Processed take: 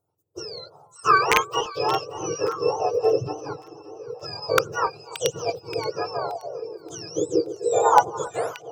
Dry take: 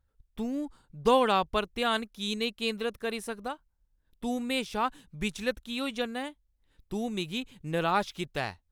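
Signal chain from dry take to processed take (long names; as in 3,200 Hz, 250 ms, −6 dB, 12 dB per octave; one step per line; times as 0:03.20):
frequency axis turned over on the octave scale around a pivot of 1,100 Hz
parametric band 1,600 Hz −11 dB 0.55 octaves
harmonic generator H 2 −27 dB, 3 −40 dB, 7 −45 dB, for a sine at −16.5 dBFS
drawn EQ curve 160 Hz 0 dB, 240 Hz −17 dB, 460 Hz +13 dB, 910 Hz +8 dB, 1,400 Hz +12 dB, 2,000 Hz −12 dB, 7,100 Hz +6 dB, 12,000 Hz −2 dB
wrap-around overflow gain 12 dB
delay that swaps between a low-pass and a high-pass 288 ms, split 1,000 Hz, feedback 70%, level −12.5 dB
auto-filter bell 0.28 Hz 270–3,300 Hz +16 dB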